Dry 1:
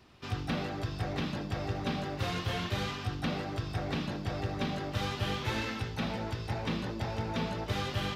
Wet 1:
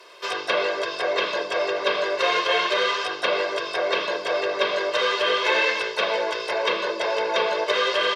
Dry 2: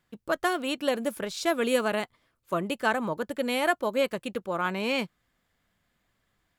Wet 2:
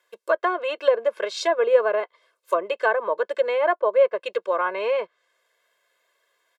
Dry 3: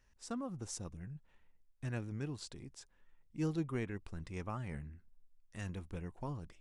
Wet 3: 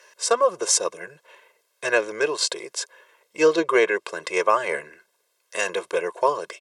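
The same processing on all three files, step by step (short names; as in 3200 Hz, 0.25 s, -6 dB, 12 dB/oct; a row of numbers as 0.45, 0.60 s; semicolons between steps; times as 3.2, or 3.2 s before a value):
treble ducked by the level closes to 1300 Hz, closed at -23.5 dBFS; HPF 390 Hz 24 dB/oct; comb 1.9 ms, depth 95%; match loudness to -23 LUFS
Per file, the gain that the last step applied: +12.5, +4.0, +23.0 dB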